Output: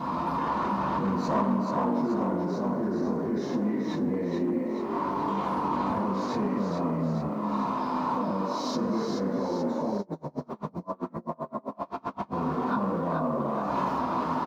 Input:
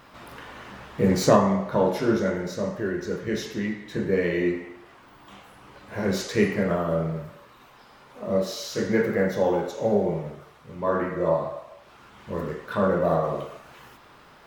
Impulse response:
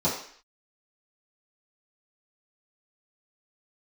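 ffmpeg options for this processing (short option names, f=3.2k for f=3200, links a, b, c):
-filter_complex "[0:a]highshelf=f=5.8k:g=-7.5[a];[1:a]atrim=start_sample=2205,atrim=end_sample=4410[b];[a][b]afir=irnorm=-1:irlink=0,volume=-1.5dB,asoftclip=hard,volume=1.5dB,acompressor=threshold=-28dB:ratio=12,alimiter=level_in=4dB:limit=-24dB:level=0:latency=1:release=20,volume=-4dB,asplit=8[c][d][e][f][g][h][i][j];[d]adelay=431,afreqshift=46,volume=-5dB[k];[e]adelay=862,afreqshift=92,volume=-10.4dB[l];[f]adelay=1293,afreqshift=138,volume=-15.7dB[m];[g]adelay=1724,afreqshift=184,volume=-21.1dB[n];[h]adelay=2155,afreqshift=230,volume=-26.4dB[o];[i]adelay=2586,afreqshift=276,volume=-31.8dB[p];[j]adelay=3017,afreqshift=322,volume=-37.1dB[q];[c][k][l][m][n][o][p][q]amix=inputs=8:normalize=0,acrusher=bits=10:mix=0:aa=0.000001,equalizer=f=250:t=o:w=0.67:g=9,equalizer=f=1k:t=o:w=0.67:g=12,equalizer=f=16k:t=o:w=0.67:g=-6,asplit=3[r][s][t];[r]afade=t=out:st=9.97:d=0.02[u];[s]aeval=exprs='val(0)*pow(10,-33*(0.5-0.5*cos(2*PI*7.7*n/s))/20)':c=same,afade=t=in:st=9.97:d=0.02,afade=t=out:st=12.33:d=0.02[v];[t]afade=t=in:st=12.33:d=0.02[w];[u][v][w]amix=inputs=3:normalize=0"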